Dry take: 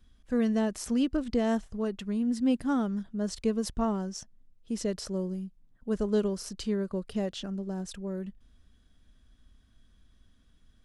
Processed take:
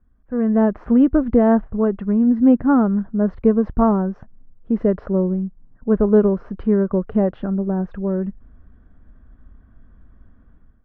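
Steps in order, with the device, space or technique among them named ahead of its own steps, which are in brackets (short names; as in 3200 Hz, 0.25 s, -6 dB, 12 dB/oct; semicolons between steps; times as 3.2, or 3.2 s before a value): action camera in a waterproof case (LPF 1500 Hz 24 dB/oct; AGC gain up to 13.5 dB; AAC 64 kbps 48000 Hz)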